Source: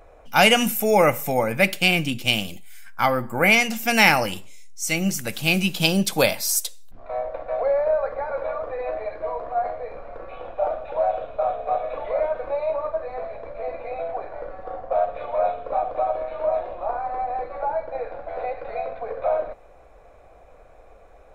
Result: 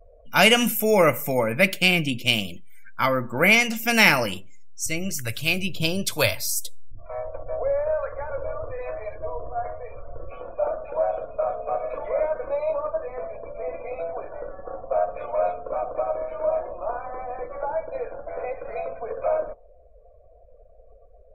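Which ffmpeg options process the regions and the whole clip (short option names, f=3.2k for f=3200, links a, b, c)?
-filter_complex "[0:a]asettb=1/sr,asplit=3[a][b][c];[a]atrim=end=4.864[d];[b]atrim=start=4.86:end=10.31,asetpts=PTS-STARTPTS,afade=t=in:d=0.004:c=qsin,afade=t=out:st=5.446:d=0.004:c=qsin,lowshelf=f=140:t=q:w=3:g=8,acrossover=split=650[e][f];[e]aeval=exprs='val(0)*(1-0.5/2+0.5/2*cos(2*PI*1.1*n/s))':c=same[g];[f]aeval=exprs='val(0)*(1-0.5/2-0.5/2*cos(2*PI*1.1*n/s))':c=same[h];[g][h]amix=inputs=2:normalize=0[i];[c]atrim=start=10.306[j];[d][i]acrossfade=d=0.004:c1=hsin:c2=qsin[k];[k][j]acrossfade=d=0.004:c1=qsin:c2=hsin,bandreject=f=790:w=5.2,afftdn=nr=28:nf=-45"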